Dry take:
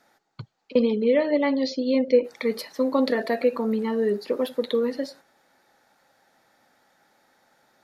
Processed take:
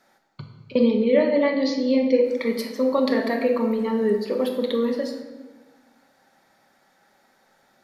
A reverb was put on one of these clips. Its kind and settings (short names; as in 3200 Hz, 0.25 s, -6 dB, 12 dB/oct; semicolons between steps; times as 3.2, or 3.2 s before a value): shoebox room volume 760 m³, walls mixed, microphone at 1.1 m